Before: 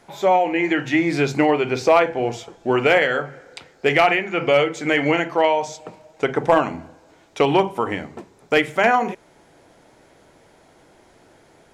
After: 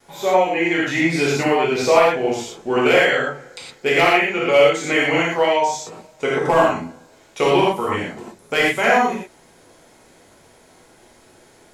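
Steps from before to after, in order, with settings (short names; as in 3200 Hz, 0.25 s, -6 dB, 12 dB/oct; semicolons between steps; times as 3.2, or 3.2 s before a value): gate with hold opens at -49 dBFS; high shelf 4600 Hz +9.5 dB; non-linear reverb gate 0.14 s flat, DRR -6 dB; gain -5.5 dB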